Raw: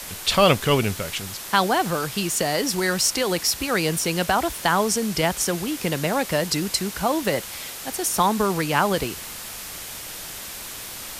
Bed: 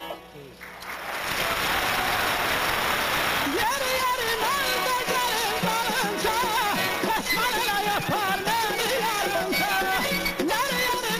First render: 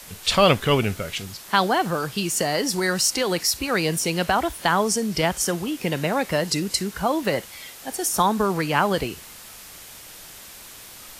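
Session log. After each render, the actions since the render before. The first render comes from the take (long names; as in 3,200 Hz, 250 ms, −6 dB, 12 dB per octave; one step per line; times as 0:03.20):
noise reduction from a noise print 7 dB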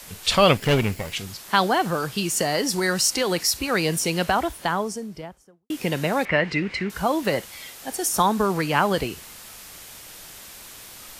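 0:00.57–0:01.12: lower of the sound and its delayed copy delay 0.4 ms
0:04.16–0:05.70: fade out and dull
0:06.25–0:06.90: low-pass with resonance 2,200 Hz, resonance Q 3.6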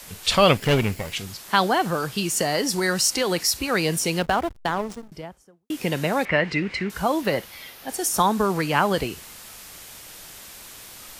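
0:04.19–0:05.12: slack as between gear wheels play −24.5 dBFS
0:07.21–0:07.88: parametric band 7,800 Hz −5.5 dB → −13 dB 0.64 octaves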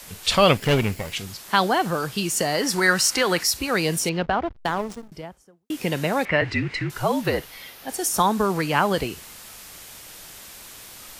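0:02.61–0:03.44: parametric band 1,500 Hz +8 dB 1.4 octaves
0:04.09–0:04.57: high-frequency loss of the air 220 metres
0:06.41–0:07.63: frequency shifter −54 Hz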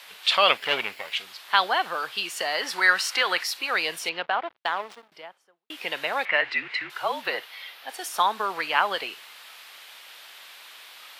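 high-pass filter 800 Hz 12 dB per octave
high shelf with overshoot 4,900 Hz −10 dB, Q 1.5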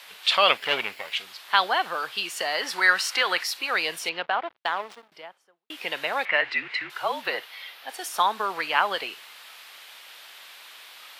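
no processing that can be heard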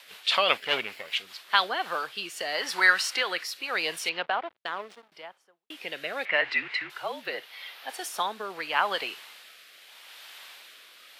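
rotating-speaker cabinet horn 5 Hz, later 0.8 Hz, at 0:01.28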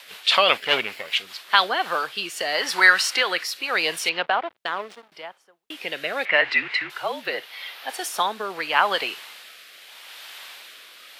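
level +6 dB
brickwall limiter −3 dBFS, peak gain reduction 2.5 dB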